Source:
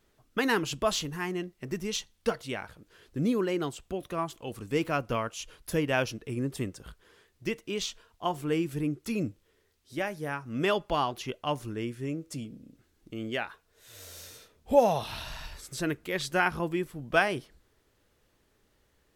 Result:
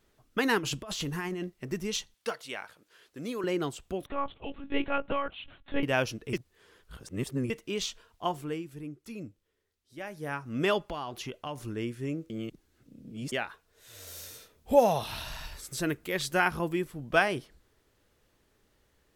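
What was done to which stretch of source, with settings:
0.58–1.50 s: compressor with a negative ratio -35 dBFS
2.14–3.44 s: high-pass 770 Hz 6 dB/octave
4.06–5.83 s: monotone LPC vocoder at 8 kHz 280 Hz
6.33–7.50 s: reverse
8.24–10.37 s: dip -10.5 dB, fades 0.39 s
10.89–11.58 s: compression 4:1, threshold -33 dBFS
12.30–13.32 s: reverse
14.07–16.83 s: treble shelf 11 kHz +8 dB

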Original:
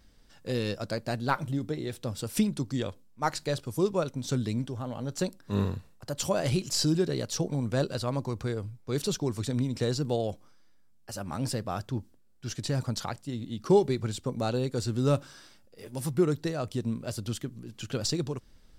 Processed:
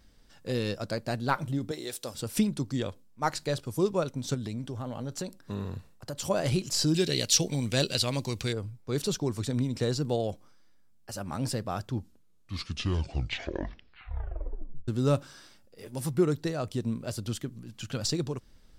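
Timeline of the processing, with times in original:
1.71–2.15 s: tone controls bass -15 dB, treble +11 dB
4.34–6.30 s: compression 4:1, threshold -31 dBFS
6.94–8.53 s: resonant high shelf 1.8 kHz +10.5 dB, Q 1.5
11.87 s: tape stop 3.01 s
17.59–18.07 s: peaking EQ 390 Hz -8 dB 0.57 oct

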